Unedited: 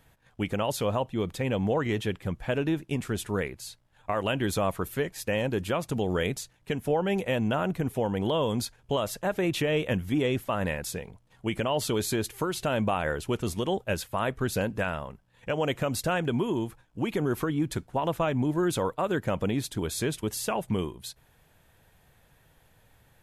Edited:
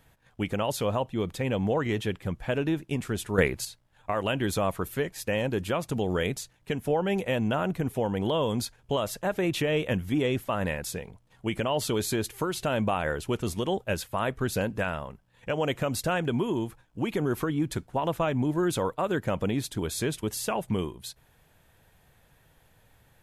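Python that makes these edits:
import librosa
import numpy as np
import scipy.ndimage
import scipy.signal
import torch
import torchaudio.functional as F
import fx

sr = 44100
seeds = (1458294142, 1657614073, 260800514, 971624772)

y = fx.edit(x, sr, fx.clip_gain(start_s=3.38, length_s=0.27, db=8.5), tone=tone)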